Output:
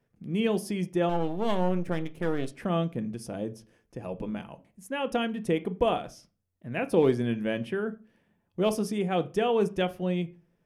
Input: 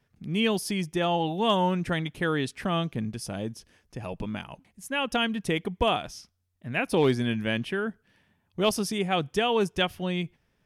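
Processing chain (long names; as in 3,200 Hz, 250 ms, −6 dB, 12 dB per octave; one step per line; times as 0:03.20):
0:01.09–0:02.48: gain on one half-wave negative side −12 dB
octave-band graphic EQ 250/500/4,000 Hz +5/+7/−5 dB
convolution reverb RT60 0.35 s, pre-delay 6 ms, DRR 10 dB
level −6 dB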